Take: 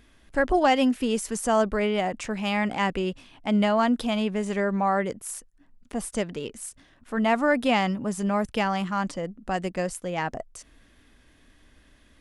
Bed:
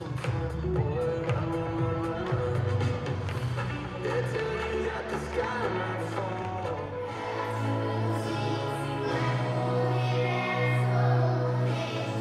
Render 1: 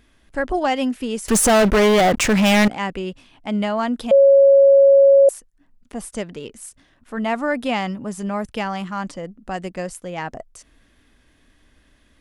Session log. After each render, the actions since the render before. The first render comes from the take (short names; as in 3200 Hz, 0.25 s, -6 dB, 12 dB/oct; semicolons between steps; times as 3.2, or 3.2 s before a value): 1.28–2.68 sample leveller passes 5; 4.11–5.29 bleep 552 Hz -7.5 dBFS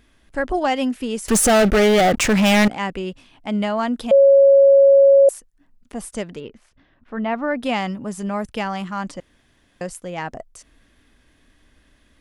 1.41–2.18 Butterworth band-stop 1000 Hz, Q 4.6; 6.4–7.63 air absorption 270 m; 9.2–9.81 room tone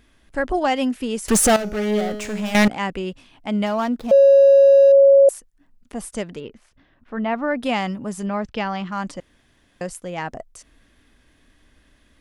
1.56–2.55 resonator 210 Hz, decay 1.1 s, mix 80%; 3.66–4.92 median filter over 15 samples; 8.26–8.92 LPF 5500 Hz 24 dB/oct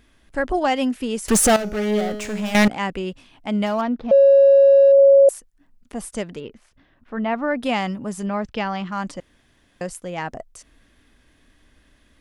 3.81–4.99 air absorption 220 m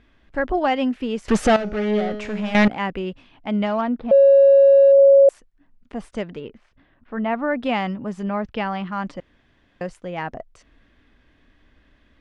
LPF 3300 Hz 12 dB/oct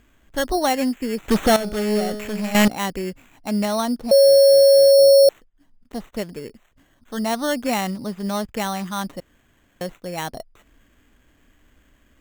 sample-and-hold 9×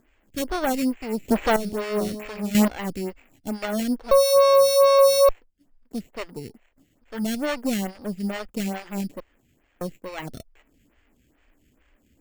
minimum comb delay 0.41 ms; photocell phaser 2.3 Hz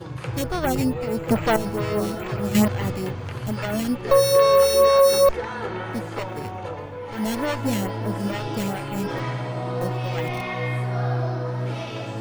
add bed 0 dB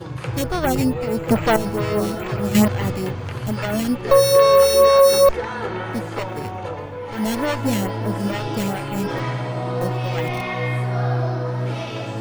gain +3 dB